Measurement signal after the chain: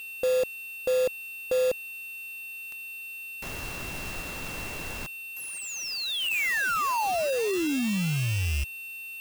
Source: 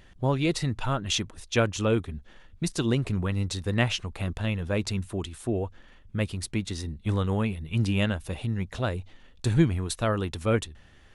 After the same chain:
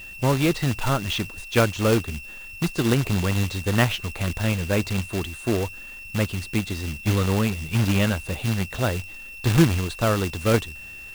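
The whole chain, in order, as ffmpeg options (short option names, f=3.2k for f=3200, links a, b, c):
-filter_complex "[0:a]acrossover=split=3500[a][b];[b]acompressor=threshold=-45dB:ratio=4:attack=1:release=60[c];[a][c]amix=inputs=2:normalize=0,aeval=exprs='val(0)+0.00794*sin(2*PI*2700*n/s)':c=same,acrusher=bits=2:mode=log:mix=0:aa=0.000001,volume=4dB"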